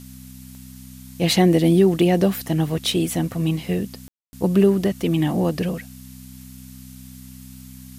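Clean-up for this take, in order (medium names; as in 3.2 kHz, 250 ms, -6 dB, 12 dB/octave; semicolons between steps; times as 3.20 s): de-click; de-hum 64.2 Hz, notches 4; room tone fill 4.08–4.33 s; noise reduction 23 dB, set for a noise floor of -41 dBFS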